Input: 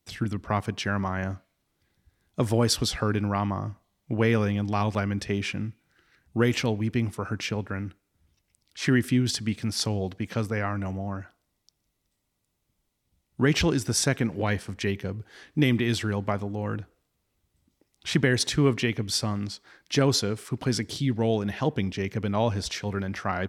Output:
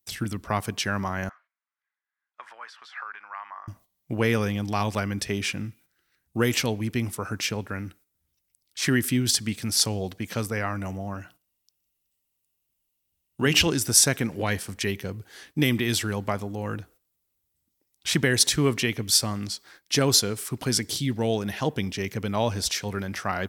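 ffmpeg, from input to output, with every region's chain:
-filter_complex "[0:a]asettb=1/sr,asplit=3[s0][s1][s2];[s0]atrim=end=1.294[s3];[s1]atrim=start=1.29:end=3.68,asetpts=PTS-STARTPTS,afade=t=in:d=0.004:c=qsin,afade=t=out:st=2.386:d=0.004:c=qsin,tiltshelf=f=1300:g=-7,acompressor=threshold=0.0316:ratio=2.5:attack=3.2:release=140:knee=1:detection=peak,asuperpass=centerf=1300:order=4:qfactor=1.3[s4];[s2]atrim=start=3.676[s5];[s3][s4]acrossfade=d=0.004:c1=hsin:c2=qsin[s6];[s6][s5]acrossfade=d=0.004:c1=qsin:c2=hsin,asettb=1/sr,asplit=3[s7][s8][s9];[s7]atrim=end=11.144[s10];[s8]atrim=start=11.14:end=13.67,asetpts=PTS-STARTPTS,afade=t=in:d=0.004:c=qsin,afade=t=out:st=2.526:d=0.004:c=qsin,equalizer=f=2800:w=6.7:g=11,bandreject=f=60:t=h:w=6,bandreject=f=120:t=h:w=6,bandreject=f=180:t=h:w=6,bandreject=f=240:t=h:w=6,bandreject=f=300:t=h:w=6[s11];[s9]atrim=start=13.666[s12];[s10][s11]acrossfade=d=0.004:c1=hsin:c2=qsin[s13];[s13][s12]acrossfade=d=0.004:c1=qsin:c2=hsin,aemphasis=mode=production:type=50fm,agate=range=0.282:threshold=0.00251:ratio=16:detection=peak,lowshelf=f=360:g=-2.5,volume=1.12"

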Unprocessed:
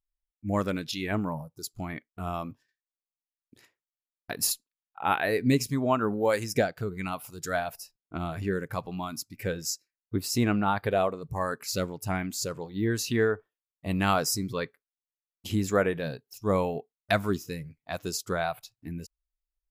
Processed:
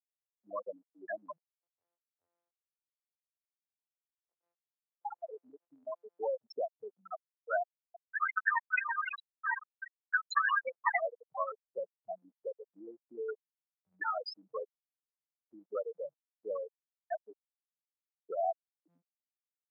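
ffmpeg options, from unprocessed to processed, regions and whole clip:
-filter_complex "[0:a]asettb=1/sr,asplit=3[s0][s1][s2];[s0]atrim=end=1.374[s3];[s1]atrim=start=1.37:end=6.2,asetpts=PTS-STARTPTS,afade=t=in:d=0.004:c=qsin,afade=t=out:st=4.826:d=0.004:c=qsin,highpass=62,aeval=exprs='max(val(0),0)':c=same,aecho=1:1:127:0.178,atrim=end_sample=213003[s4];[s2]atrim=start=6.196[s5];[s3][s4]acrossfade=d=0.004:c1=hsin:c2=qsin[s6];[s6][s5]acrossfade=d=0.004:c1=qsin:c2=hsin,asettb=1/sr,asplit=3[s7][s8][s9];[s7]atrim=end=7.614[s10];[s8]atrim=start=7.61:end=11.02,asetpts=PTS-STARTPTS,afade=t=in:d=0.004:c=qsin,afade=t=out:st=3.406:d=0.004:c=qsin,aeval=exprs='val(0)*sin(2*PI*1400*n/s)':c=same,aphaser=in_gain=1:out_gain=1:delay=2.1:decay=0.74:speed=1.3:type=triangular,aecho=1:1:334:0.422,atrim=end_sample=150381[s11];[s9]atrim=start=11.016[s12];[s10][s11]acrossfade=d=0.004:c1=hsin:c2=qsin[s13];[s13][s12]acrossfade=d=0.004:c1=qsin:c2=hsin,asettb=1/sr,asplit=3[s14][s15][s16];[s14]atrim=end=13.284[s17];[s15]atrim=start=13.28:end=14.11,asetpts=PTS-STARTPTS,afade=t=in:d=0.004:c=qsin,afade=t=out:st=0.826:d=0.004:c=qsin,equalizer=f=630:t=o:w=0.67:g=-4,aecho=1:1:2.2:0.92,atrim=end_sample=36603[s18];[s16]atrim=start=14.106[s19];[s17][s18]acrossfade=d=0.004:c1=hsin:c2=qsin[s20];[s20][s19]acrossfade=d=0.004:c1=qsin:c2=hsin,asettb=1/sr,asplit=3[s21][s22][s23];[s21]atrim=end=16.674[s24];[s22]atrim=start=16.67:end=18.16,asetpts=PTS-STARTPTS,afade=t=in:d=0.004:c=qsin,afade=t=out:st=1.486:d=0.004:c=qsin,acompressor=threshold=0.0355:ratio=2:attack=3.2:release=140:knee=1:detection=peak,aeval=exprs='val(0)*gte(abs(val(0)),0.0398)':c=same[s25];[s23]atrim=start=18.156[s26];[s24][s25]acrossfade=d=0.004:c1=hsin:c2=qsin[s27];[s27][s26]acrossfade=d=0.004:c1=qsin:c2=hsin,acompressor=threshold=0.0447:ratio=16,afftfilt=real='re*gte(hypot(re,im),0.126)':imag='im*gte(hypot(re,im),0.126)':win_size=1024:overlap=0.75,highpass=f=570:w=0.5412,highpass=f=570:w=1.3066,volume=1.58"

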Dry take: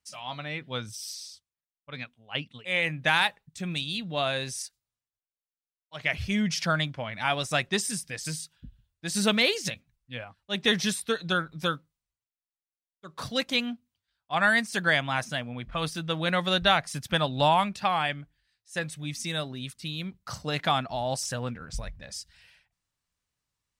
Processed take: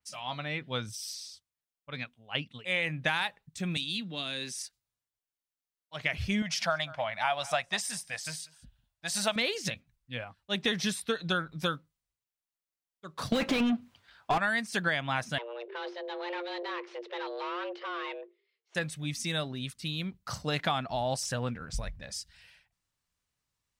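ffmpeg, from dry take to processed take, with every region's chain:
-filter_complex "[0:a]asettb=1/sr,asplit=3[s0][s1][s2];[s0]atrim=end=3.774[s3];[s1]atrim=start=3.77:end=4.58,asetpts=PTS-STARTPTS,afade=t=in:d=0.004:c=qsin,afade=t=out:st=0.806:d=0.004:c=qsin,acrossover=split=390|3000[s4][s5][s6];[s5]acompressor=threshold=0.0141:ratio=6:attack=3.2:release=140:knee=2.83:detection=peak[s7];[s4][s7][s6]amix=inputs=3:normalize=0,highpass=f=180:w=0.5412,highpass=f=180:w=1.3066,equalizer=f=650:t=o:w=1.1:g=-8[s8];[s2]atrim=start=4.576[s9];[s3][s8]acrossfade=d=0.004:c1=hsin:c2=qsin[s10];[s10][s9]acrossfade=d=0.004:c1=qsin:c2=hsin,asettb=1/sr,asplit=3[s11][s12][s13];[s11]atrim=end=6.424[s14];[s12]atrim=start=6.42:end=9.36,asetpts=PTS-STARTPTS,afade=t=in:d=0.004:c=qsin,afade=t=out:st=2.936:d=0.004:c=qsin,lowshelf=f=510:t=q:w=3:g=-9,aecho=1:1:192:0.0668,atrim=end_sample=129654[s15];[s13]atrim=start=9.356[s16];[s14][s15]acrossfade=d=0.004:c1=hsin:c2=qsin[s17];[s17][s16]acrossfade=d=0.004:c1=qsin:c2=hsin,asettb=1/sr,asplit=3[s18][s19][s20];[s18]atrim=end=13.324[s21];[s19]atrim=start=13.32:end=14.38,asetpts=PTS-STARTPTS,afade=t=in:d=0.004:c=qsin,afade=t=out:st=1.056:d=0.004:c=qsin,lowshelf=f=190:g=8,asplit=2[s22][s23];[s23]highpass=f=720:p=1,volume=63.1,asoftclip=type=tanh:threshold=0.282[s24];[s22][s24]amix=inputs=2:normalize=0,lowpass=f=1100:p=1,volume=0.501[s25];[s20]atrim=start=14.376[s26];[s21][s25]acrossfade=d=0.004:c1=hsin:c2=qsin[s27];[s27][s26]acrossfade=d=0.004:c1=qsin:c2=hsin,asettb=1/sr,asplit=3[s28][s29][s30];[s28]atrim=end=15.384[s31];[s29]atrim=start=15.38:end=18.75,asetpts=PTS-STARTPTS,afade=t=in:d=0.004:c=qsin,afade=t=out:st=3.366:d=0.004:c=qsin,aeval=exprs='(tanh(56.2*val(0)+0.6)-tanh(0.6))/56.2':c=same,afreqshift=350,lowpass=f=3600:w=0.5412,lowpass=f=3600:w=1.3066[s32];[s30]atrim=start=18.746[s33];[s31][s32]acrossfade=d=0.004:c1=hsin:c2=qsin[s34];[s34][s33]acrossfade=d=0.004:c1=qsin:c2=hsin,acompressor=threshold=0.0562:ratio=6,adynamicequalizer=threshold=0.00631:dfrequency=5200:dqfactor=0.7:tfrequency=5200:tqfactor=0.7:attack=5:release=100:ratio=0.375:range=3:mode=cutabove:tftype=highshelf"

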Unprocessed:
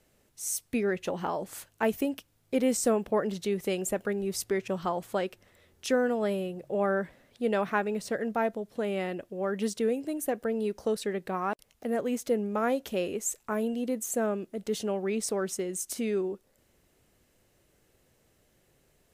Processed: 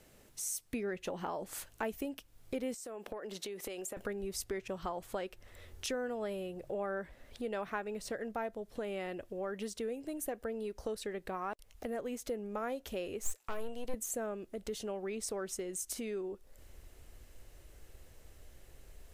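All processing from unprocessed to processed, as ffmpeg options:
-filter_complex "[0:a]asettb=1/sr,asplit=3[s0][s1][s2];[s0]atrim=end=2.744[s3];[s1]atrim=start=2.74:end=3.97,asetpts=PTS-STARTPTS,afade=t=in:d=0.004:c=qsin,afade=t=out:st=1.226:d=0.004:c=qsin,highpass=300,acompressor=threshold=0.0158:ratio=10:attack=3.2:release=140:knee=1:detection=peak[s4];[s2]atrim=start=3.966[s5];[s3][s4]acrossfade=d=0.004:c1=hsin:c2=qsin[s6];[s6][s5]acrossfade=d=0.004:c1=qsin:c2=hsin,asettb=1/sr,asplit=3[s7][s8][s9];[s7]atrim=end=13.224[s10];[s8]atrim=start=13.22:end=13.94,asetpts=PTS-STARTPTS,afade=t=in:d=0.004:c=qsin,afade=t=out:st=0.716:d=0.004:c=qsin,highpass=380,aeval=exprs='(tanh(28.2*val(0)+0.5)-tanh(0.5))/28.2':c=same[s11];[s9]atrim=start=13.936[s12];[s10][s11]acrossfade=d=0.004:c1=hsin:c2=qsin[s13];[s13][s12]acrossfade=d=0.004:c1=qsin:c2=hsin,acompressor=threshold=0.00447:ratio=2.5,asubboost=boost=9:cutoff=53,volume=1.88"

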